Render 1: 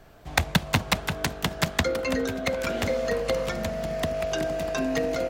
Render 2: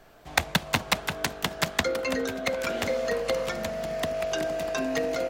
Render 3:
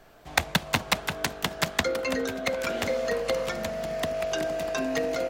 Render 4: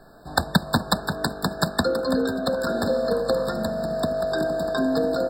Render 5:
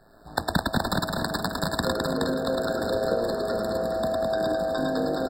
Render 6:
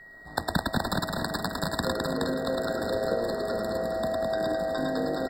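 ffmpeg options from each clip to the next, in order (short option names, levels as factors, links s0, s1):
-af "equalizer=f=67:w=0.37:g=-9"
-af anull
-af "equalizer=f=210:w=1.4:g=6.5,afftfilt=real='re*eq(mod(floor(b*sr/1024/1800),2),0)':imag='im*eq(mod(floor(b*sr/1024/1800),2),0)':win_size=1024:overlap=0.75,volume=1.58"
-filter_complex "[0:a]tremolo=f=110:d=0.75,asplit=2[s0][s1];[s1]aecho=0:1:106|109|210|422|470|659:0.562|0.596|0.631|0.631|0.299|0.2[s2];[s0][s2]amix=inputs=2:normalize=0,volume=0.708"
-af "aeval=exprs='val(0)+0.00631*sin(2*PI*1900*n/s)':c=same,volume=0.75"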